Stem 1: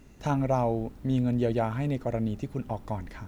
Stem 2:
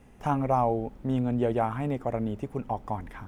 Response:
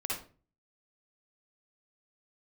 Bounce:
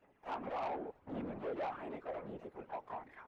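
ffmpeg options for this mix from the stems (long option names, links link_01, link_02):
-filter_complex "[0:a]aeval=exprs='(tanh(39.8*val(0)+0.75)-tanh(0.75))/39.8':channel_layout=same,volume=-1.5dB[link_01];[1:a]aphaser=in_gain=1:out_gain=1:delay=4.2:decay=0.52:speed=0.85:type=sinusoidal,adelay=24,volume=-4.5dB,asplit=2[link_02][link_03];[link_03]apad=whole_len=144423[link_04];[link_01][link_04]sidechaingate=range=-33dB:threshold=-43dB:ratio=16:detection=peak[link_05];[link_05][link_02]amix=inputs=2:normalize=0,acrossover=split=330 3000:gain=0.0794 1 0.141[link_06][link_07][link_08];[link_06][link_07][link_08]amix=inputs=3:normalize=0,afftfilt=real='hypot(re,im)*cos(2*PI*random(0))':imag='hypot(re,im)*sin(2*PI*random(1))':win_size=512:overlap=0.75,asoftclip=type=tanh:threshold=-34dB"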